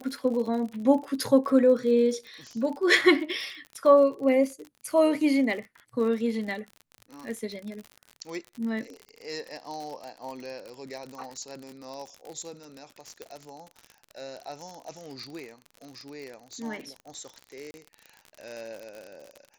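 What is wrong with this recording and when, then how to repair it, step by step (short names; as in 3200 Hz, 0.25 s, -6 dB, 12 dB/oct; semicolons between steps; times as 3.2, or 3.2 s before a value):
crackle 50/s -34 dBFS
13.22 pop -23 dBFS
17.71–17.74 gap 30 ms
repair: de-click; interpolate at 17.71, 30 ms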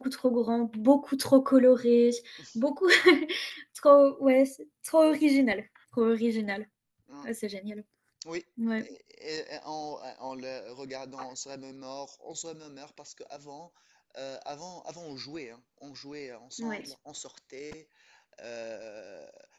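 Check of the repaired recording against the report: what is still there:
none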